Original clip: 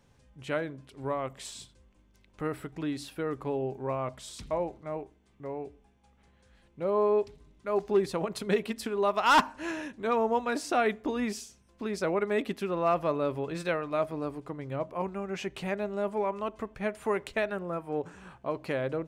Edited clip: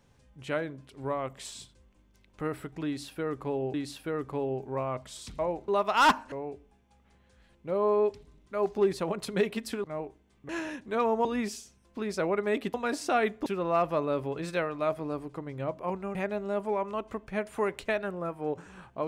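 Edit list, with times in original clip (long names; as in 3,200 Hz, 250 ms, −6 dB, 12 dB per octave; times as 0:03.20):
0:02.86–0:03.74: repeat, 2 plays
0:04.80–0:05.45: swap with 0:08.97–0:09.61
0:10.37–0:11.09: move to 0:12.58
0:15.27–0:15.63: remove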